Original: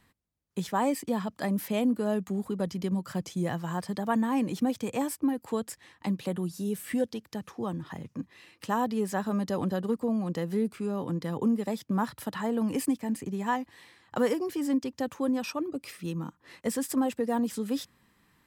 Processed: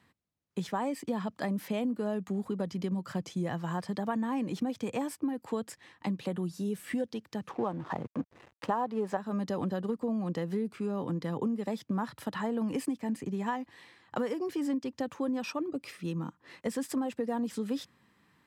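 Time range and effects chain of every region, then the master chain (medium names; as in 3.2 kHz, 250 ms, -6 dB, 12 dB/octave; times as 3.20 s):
7.49–9.17 s: peaking EQ 760 Hz +12 dB 2.3 oct + hysteresis with a dead band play -39.5 dBFS
whole clip: high-pass 91 Hz; treble shelf 8.3 kHz -12 dB; compression, threshold -28 dBFS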